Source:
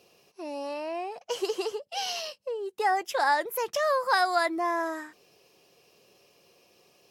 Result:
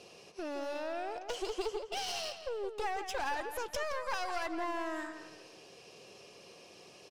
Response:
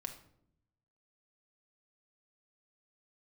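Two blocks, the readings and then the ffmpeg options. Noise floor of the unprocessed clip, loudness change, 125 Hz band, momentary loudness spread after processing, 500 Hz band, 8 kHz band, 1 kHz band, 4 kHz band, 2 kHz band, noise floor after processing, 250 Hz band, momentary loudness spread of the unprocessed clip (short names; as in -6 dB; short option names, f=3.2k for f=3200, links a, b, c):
-64 dBFS, -9.0 dB, n/a, 18 LU, -7.5 dB, -5.5 dB, -10.5 dB, -6.5 dB, -9.5 dB, -56 dBFS, -5.5 dB, 12 LU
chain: -filter_complex "[0:a]lowpass=f=9.7k:w=0.5412,lowpass=f=9.7k:w=1.3066,acompressor=threshold=-45dB:ratio=2.5,aeval=exprs='clip(val(0),-1,0.00531)':c=same,asplit=2[a][b];[b]adelay=168,lowpass=f=3.7k:p=1,volume=-8.5dB,asplit=2[c][d];[d]adelay=168,lowpass=f=3.7k:p=1,volume=0.38,asplit=2[e][f];[f]adelay=168,lowpass=f=3.7k:p=1,volume=0.38,asplit=2[g][h];[h]adelay=168,lowpass=f=3.7k:p=1,volume=0.38[i];[c][e][g][i]amix=inputs=4:normalize=0[j];[a][j]amix=inputs=2:normalize=0,volume=6.5dB"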